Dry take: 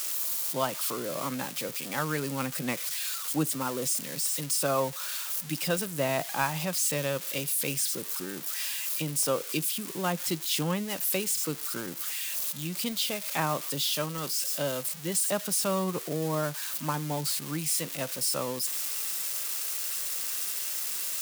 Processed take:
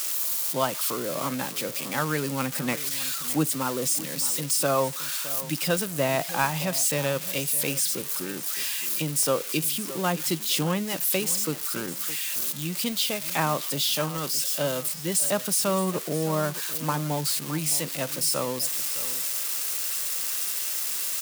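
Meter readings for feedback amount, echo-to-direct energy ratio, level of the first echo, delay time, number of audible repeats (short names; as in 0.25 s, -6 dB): 22%, -15.5 dB, -15.5 dB, 0.614 s, 2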